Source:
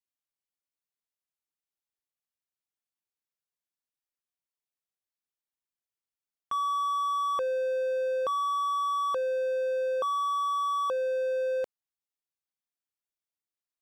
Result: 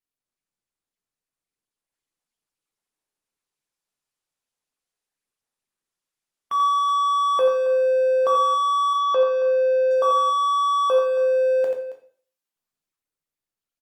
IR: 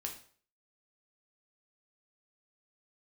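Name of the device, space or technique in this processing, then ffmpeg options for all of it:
far-field microphone of a smart speaker: -filter_complex "[0:a]aecho=1:1:65|86|274:0.168|0.473|0.178,adynamicequalizer=threshold=0.00891:dfrequency=640:dqfactor=1:tfrequency=640:tqfactor=1:attack=5:release=100:ratio=0.375:range=2:mode=boostabove:tftype=bell,asettb=1/sr,asplit=3[link_01][link_02][link_03];[link_01]atrim=end=8.934[link_04];[link_02]atrim=start=8.93:end=9.91,asetpts=PTS-STARTPTS,afade=type=in:duration=0.004:curve=qsin,afade=type=out:start_time=0.976:duration=0.004:curve=qsin,lowpass=frequency=5700:width=0.5412,lowpass=frequency=5700:width=1.3066[link_05];[link_03]atrim=start=9.906[link_06];[link_04][link_05]acrossfade=duration=0.004:curve1=hsin:curve2=qsin[link_07];[link_07][link_06]acrossfade=duration=0.004:curve1=qsin:curve2=hsin[link_08];[1:a]atrim=start_sample=2205[link_09];[link_08][link_09]afir=irnorm=-1:irlink=0,highpass=150,dynaudnorm=framelen=330:gausssize=11:maxgain=7dB" -ar 48000 -c:a libopus -b:a 32k

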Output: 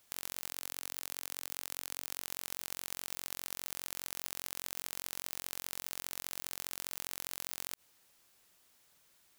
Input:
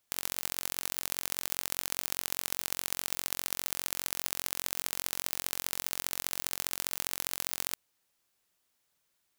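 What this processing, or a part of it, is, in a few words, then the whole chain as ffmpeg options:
de-esser from a sidechain: -filter_complex "[0:a]asplit=2[link_01][link_02];[link_02]highpass=5500,apad=whole_len=413860[link_03];[link_01][link_03]sidechaincompress=threshold=-44dB:ratio=8:attack=4.8:release=56,asettb=1/sr,asplit=3[link_04][link_05][link_06];[link_04]atrim=end=0.484[link_07];[link_05]atrim=start=0.48:end=2.21,asetpts=PTS-STARTPTS,afade=type=in:duration=0.004:curve=qsin,afade=type=out:start_time=1.726:duration=0.004:curve=qsin,highpass=frequency=220:poles=1[link_08];[link_06]atrim=start=2.206[link_09];[link_07][link_08]acrossfade=duration=0.004:curve1=hsin:curve2=qsin[link_10];[link_10][link_09]acrossfade=duration=0.004:curve1=qsin:curve2=hsin,volume=9dB"

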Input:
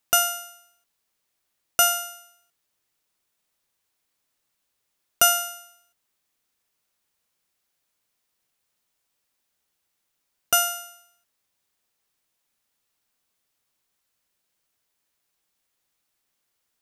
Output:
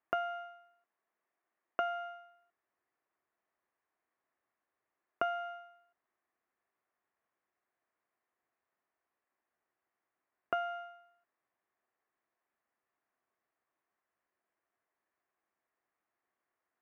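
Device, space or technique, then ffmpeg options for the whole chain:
bass amplifier: -filter_complex "[0:a]asettb=1/sr,asplit=3[link_01][link_02][link_03];[link_01]atrim=end=0.454[link_04];[link_02]atrim=start=0.45:end=1.88,asetpts=PTS-STARTPTS,afade=type=in:duration=0.004:curve=qsin,afade=type=out:start_time=1.426:duration=0.004:curve=qsin,highpass=150[link_05];[link_03]atrim=start=1.876[link_06];[link_04][link_05]acrossfade=duration=0.004:curve1=hsin:curve2=qsin[link_07];[link_07][link_06]acrossfade=duration=0.004:curve1=qsin:curve2=hsin,acompressor=threshold=-26dB:ratio=4,highpass=85,equalizer=frequency=94:width_type=q:width=4:gain=-8,equalizer=frequency=160:width_type=q:width=4:gain=-9,equalizer=frequency=360:width_type=q:width=4:gain=6,equalizer=frequency=690:width_type=q:width=4:gain=7,equalizer=frequency=1100:width_type=q:width=4:gain=6,equalizer=frequency=1800:width_type=q:width=4:gain=5,lowpass=frequency=2100:width=0.5412,lowpass=frequency=2100:width=1.3066,volume=-6dB"

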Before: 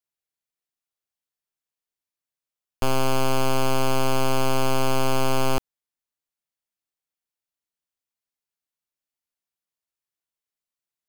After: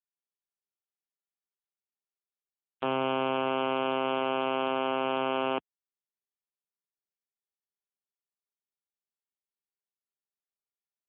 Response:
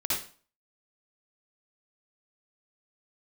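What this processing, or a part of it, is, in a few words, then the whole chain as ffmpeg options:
mobile call with aggressive noise cancelling: -filter_complex "[0:a]asettb=1/sr,asplit=3[link_01][link_02][link_03];[link_01]atrim=end=2.984[link_04];[link_02]atrim=start=2.98:end=4.37,asetpts=PTS-STARTPTS,afade=type=in:duration=0.004:curve=qsin,afade=type=out:start_time=1.386:duration=0.004:curve=qsin,highshelf=frequency=8200:gain=5[link_05];[link_03]atrim=start=4.366[link_06];[link_04][link_05]acrossfade=duration=0.004:curve1=hsin:curve2=qsin[link_07];[link_07][link_06]acrossfade=duration=0.004:curve1=qsin:curve2=hsin,highpass=frequency=170:width=0.5412,highpass=frequency=170:width=1.3066,afftdn=noise_reduction=15:noise_floor=-43,volume=-3dB" -ar 8000 -c:a libopencore_amrnb -b:a 7950

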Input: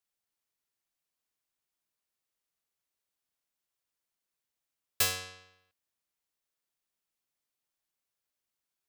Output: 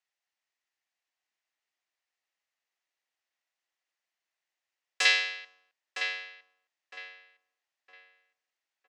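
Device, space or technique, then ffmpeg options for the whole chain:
phone speaker on a table: -filter_complex "[0:a]asettb=1/sr,asplit=3[link_01][link_02][link_03];[link_01]atrim=end=5.054[link_04];[link_02]atrim=start=5.05:end=5.45,asetpts=PTS-STARTPTS,afade=type=in:duration=0.004:curve=qsin,afade=type=out:start_time=0.396:duration=0.004:curve=qsin,equalizer=frequency=125:width_type=o:width=1:gain=4,equalizer=frequency=250:width_type=o:width=1:gain=-3,equalizer=frequency=500:width_type=o:width=1:gain=5,equalizer=frequency=1000:width_type=o:width=1:gain=-3,equalizer=frequency=2000:width_type=o:width=1:gain=11,equalizer=frequency=4000:width_type=o:width=1:gain=10,equalizer=frequency=8000:width_type=o:width=1:gain=-3[link_05];[link_03]atrim=start=5.446[link_06];[link_04][link_05]acrossfade=duration=0.004:curve1=hsin:curve2=qsin[link_07];[link_07][link_06]acrossfade=duration=0.004:curve1=qsin:curve2=hsin,highpass=frequency=330:width=0.5412,highpass=frequency=330:width=1.3066,equalizer=frequency=420:width_type=q:width=4:gain=-6,equalizer=frequency=760:width_type=q:width=4:gain=4,equalizer=frequency=1900:width_type=q:width=4:gain=9,equalizer=frequency=2700:width_type=q:width=4:gain=4,lowpass=frequency=7000:width=0.5412,lowpass=frequency=7000:width=1.3066,asplit=2[link_08][link_09];[link_09]adelay=960,lowpass=frequency=2500:poles=1,volume=-6dB,asplit=2[link_10][link_11];[link_11]adelay=960,lowpass=frequency=2500:poles=1,volume=0.33,asplit=2[link_12][link_13];[link_13]adelay=960,lowpass=frequency=2500:poles=1,volume=0.33,asplit=2[link_14][link_15];[link_15]adelay=960,lowpass=frequency=2500:poles=1,volume=0.33[link_16];[link_08][link_10][link_12][link_14][link_16]amix=inputs=5:normalize=0"

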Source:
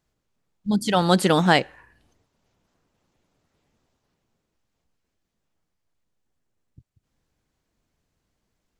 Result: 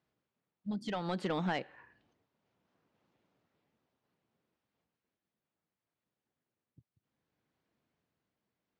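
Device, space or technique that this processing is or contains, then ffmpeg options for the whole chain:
AM radio: -af "highpass=130,lowpass=3600,acompressor=threshold=-25dB:ratio=4,asoftclip=type=tanh:threshold=-19dB,tremolo=f=0.65:d=0.39,volume=-4dB"

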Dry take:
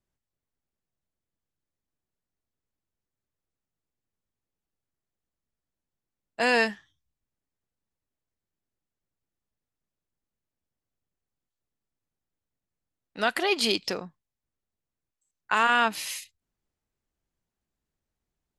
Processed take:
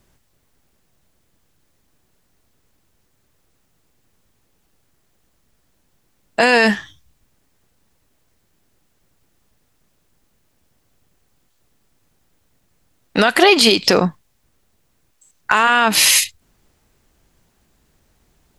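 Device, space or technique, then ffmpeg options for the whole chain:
loud club master: -af "acompressor=threshold=-28dB:ratio=2.5,asoftclip=type=hard:threshold=-15.5dB,alimiter=level_in=26dB:limit=-1dB:release=50:level=0:latency=1,volume=-1dB"

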